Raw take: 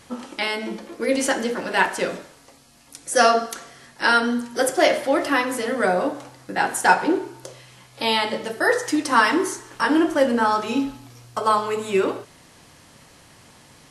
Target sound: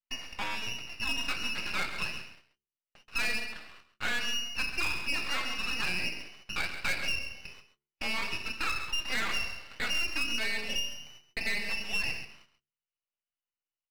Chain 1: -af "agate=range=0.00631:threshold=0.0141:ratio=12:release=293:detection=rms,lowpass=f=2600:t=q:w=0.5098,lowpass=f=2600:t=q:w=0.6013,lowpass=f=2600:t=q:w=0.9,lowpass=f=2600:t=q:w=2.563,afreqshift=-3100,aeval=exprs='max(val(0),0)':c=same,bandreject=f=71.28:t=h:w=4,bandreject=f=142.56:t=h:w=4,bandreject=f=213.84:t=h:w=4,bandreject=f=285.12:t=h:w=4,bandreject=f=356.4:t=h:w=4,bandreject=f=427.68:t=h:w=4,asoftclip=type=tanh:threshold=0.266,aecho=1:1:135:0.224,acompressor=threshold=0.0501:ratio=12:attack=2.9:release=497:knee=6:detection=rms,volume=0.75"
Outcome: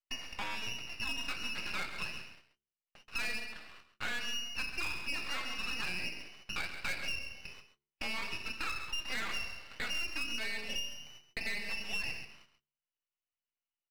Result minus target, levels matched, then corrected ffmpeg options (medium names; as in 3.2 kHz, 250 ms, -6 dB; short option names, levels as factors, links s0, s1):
compression: peak gain reduction +6 dB
-af "agate=range=0.00631:threshold=0.0141:ratio=12:release=293:detection=rms,lowpass=f=2600:t=q:w=0.5098,lowpass=f=2600:t=q:w=0.6013,lowpass=f=2600:t=q:w=0.9,lowpass=f=2600:t=q:w=2.563,afreqshift=-3100,aeval=exprs='max(val(0),0)':c=same,bandreject=f=71.28:t=h:w=4,bandreject=f=142.56:t=h:w=4,bandreject=f=213.84:t=h:w=4,bandreject=f=285.12:t=h:w=4,bandreject=f=356.4:t=h:w=4,bandreject=f=427.68:t=h:w=4,asoftclip=type=tanh:threshold=0.266,aecho=1:1:135:0.224,acompressor=threshold=0.106:ratio=12:attack=2.9:release=497:knee=6:detection=rms,volume=0.75"